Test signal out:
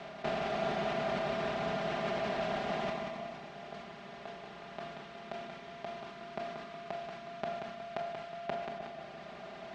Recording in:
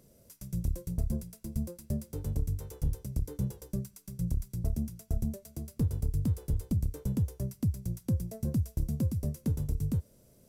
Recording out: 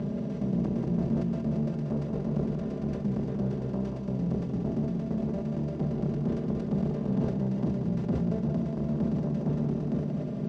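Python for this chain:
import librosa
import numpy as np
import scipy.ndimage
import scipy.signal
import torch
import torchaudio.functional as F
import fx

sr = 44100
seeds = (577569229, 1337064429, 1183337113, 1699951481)

y = fx.bin_compress(x, sr, power=0.2)
y = fx.dereverb_blind(y, sr, rt60_s=1.3)
y = y + 0.94 * np.pad(y, (int(5.0 * sr / 1000.0), 0))[:len(y)]
y = fx.tube_stage(y, sr, drive_db=21.0, bias=0.35)
y = fx.bandpass_edges(y, sr, low_hz=140.0, high_hz=3100.0)
y = fx.air_absorb(y, sr, metres=88.0)
y = fx.echo_feedback(y, sr, ms=183, feedback_pct=43, wet_db=-6)
y = fx.rev_schroeder(y, sr, rt60_s=1.7, comb_ms=27, drr_db=6.0)
y = fx.sustainer(y, sr, db_per_s=44.0)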